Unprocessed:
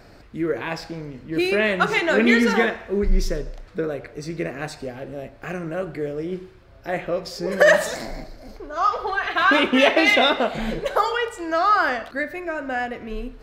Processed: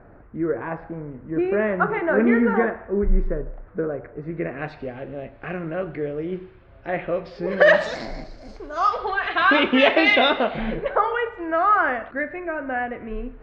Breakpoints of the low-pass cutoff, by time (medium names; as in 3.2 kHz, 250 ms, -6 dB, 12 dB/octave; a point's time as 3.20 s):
low-pass 24 dB/octave
4.20 s 1.6 kHz
4.71 s 3.1 kHz
7.33 s 3.1 kHz
8.65 s 8.4 kHz
9.14 s 4 kHz
10.37 s 4 kHz
10.94 s 2.3 kHz